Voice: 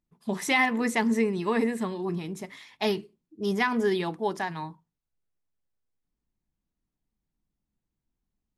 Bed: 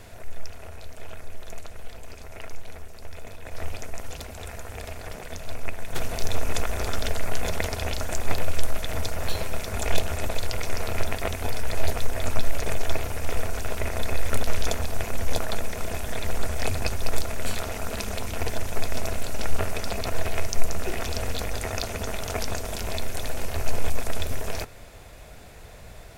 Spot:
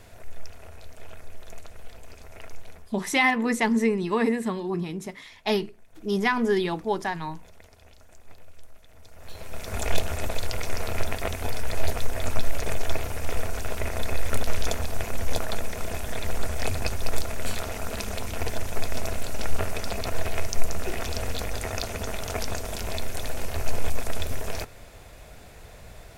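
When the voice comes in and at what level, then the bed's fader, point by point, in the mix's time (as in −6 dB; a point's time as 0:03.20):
2.65 s, +2.0 dB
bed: 0:02.68 −4 dB
0:03.24 −24.5 dB
0:08.97 −24.5 dB
0:09.74 −1 dB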